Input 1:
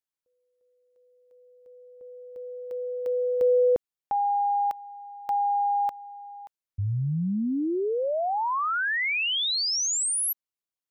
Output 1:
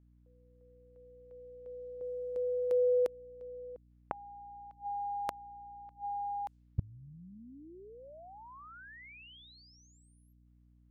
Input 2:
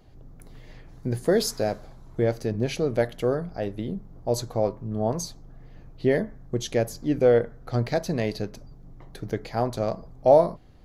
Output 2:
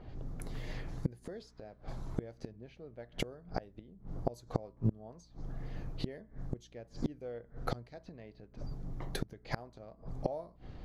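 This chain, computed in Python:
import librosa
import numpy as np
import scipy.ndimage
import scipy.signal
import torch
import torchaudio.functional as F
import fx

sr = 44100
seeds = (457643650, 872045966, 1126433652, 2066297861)

y = fx.gate_flip(x, sr, shuts_db=-24.0, range_db=-30)
y = fx.add_hum(y, sr, base_hz=60, snr_db=24)
y = fx.env_lowpass(y, sr, base_hz=1800.0, full_db=-40.0)
y = F.gain(torch.from_numpy(y), 5.0).numpy()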